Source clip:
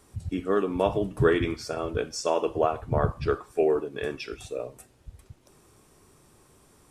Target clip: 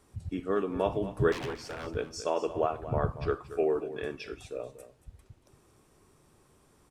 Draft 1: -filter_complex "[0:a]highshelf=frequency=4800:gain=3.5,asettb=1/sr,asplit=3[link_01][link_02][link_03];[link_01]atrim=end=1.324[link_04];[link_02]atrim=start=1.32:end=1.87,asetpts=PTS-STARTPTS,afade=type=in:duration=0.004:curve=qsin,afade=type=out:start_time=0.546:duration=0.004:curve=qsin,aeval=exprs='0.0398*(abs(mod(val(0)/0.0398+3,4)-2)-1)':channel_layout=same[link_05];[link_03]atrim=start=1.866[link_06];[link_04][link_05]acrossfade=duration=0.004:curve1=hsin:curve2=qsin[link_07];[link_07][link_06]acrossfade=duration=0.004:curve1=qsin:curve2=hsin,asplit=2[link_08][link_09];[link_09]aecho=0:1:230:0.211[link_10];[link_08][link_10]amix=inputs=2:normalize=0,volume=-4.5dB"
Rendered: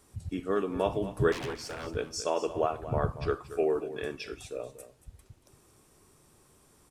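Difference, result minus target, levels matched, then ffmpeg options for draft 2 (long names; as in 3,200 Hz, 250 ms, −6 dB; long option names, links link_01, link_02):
8,000 Hz band +5.0 dB
-filter_complex "[0:a]highshelf=frequency=4800:gain=-4.5,asettb=1/sr,asplit=3[link_01][link_02][link_03];[link_01]atrim=end=1.324[link_04];[link_02]atrim=start=1.32:end=1.87,asetpts=PTS-STARTPTS,afade=type=in:duration=0.004:curve=qsin,afade=type=out:start_time=0.546:duration=0.004:curve=qsin,aeval=exprs='0.0398*(abs(mod(val(0)/0.0398+3,4)-2)-1)':channel_layout=same[link_05];[link_03]atrim=start=1.866[link_06];[link_04][link_05]acrossfade=duration=0.004:curve1=hsin:curve2=qsin[link_07];[link_07][link_06]acrossfade=duration=0.004:curve1=qsin:curve2=hsin,asplit=2[link_08][link_09];[link_09]aecho=0:1:230:0.211[link_10];[link_08][link_10]amix=inputs=2:normalize=0,volume=-4.5dB"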